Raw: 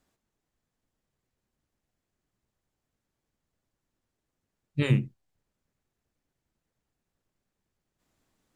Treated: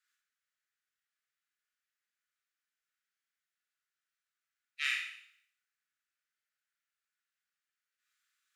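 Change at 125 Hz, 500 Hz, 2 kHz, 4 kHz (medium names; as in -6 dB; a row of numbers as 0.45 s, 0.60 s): under -40 dB, under -40 dB, +4.0 dB, +3.0 dB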